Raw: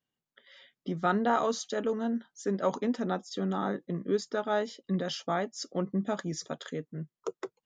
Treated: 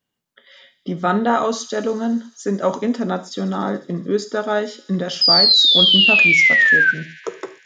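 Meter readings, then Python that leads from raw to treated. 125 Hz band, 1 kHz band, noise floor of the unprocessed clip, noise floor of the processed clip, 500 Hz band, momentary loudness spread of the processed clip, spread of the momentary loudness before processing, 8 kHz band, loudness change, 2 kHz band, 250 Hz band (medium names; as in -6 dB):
+9.0 dB, +9.0 dB, under -85 dBFS, -68 dBFS, +9.0 dB, 16 LU, 10 LU, +9.5 dB, +17.5 dB, +26.0 dB, +9.5 dB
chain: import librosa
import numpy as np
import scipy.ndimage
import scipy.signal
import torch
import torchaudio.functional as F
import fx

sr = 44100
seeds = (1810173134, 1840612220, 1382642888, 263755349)

y = fx.spec_paint(x, sr, seeds[0], shape='fall', start_s=5.21, length_s=1.7, low_hz=1500.0, high_hz=5100.0, level_db=-22.0)
y = fx.echo_wet_highpass(y, sr, ms=72, feedback_pct=83, hz=3600.0, wet_db=-16)
y = fx.rev_gated(y, sr, seeds[1], gate_ms=150, shape='falling', drr_db=8.5)
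y = y * librosa.db_to_amplitude(8.5)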